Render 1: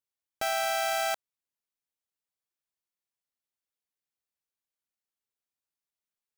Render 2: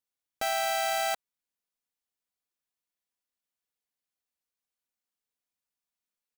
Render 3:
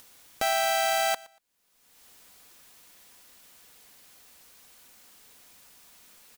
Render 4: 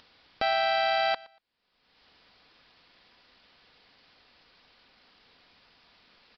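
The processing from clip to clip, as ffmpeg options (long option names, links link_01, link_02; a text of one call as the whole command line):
ffmpeg -i in.wav -af "aecho=1:1:4.1:0.32" out.wav
ffmpeg -i in.wav -af "acompressor=mode=upward:threshold=-33dB:ratio=2.5,aecho=1:1:118|236:0.0794|0.0175,volume=3.5dB" out.wav
ffmpeg -i in.wav -af "aresample=11025,aresample=44100" out.wav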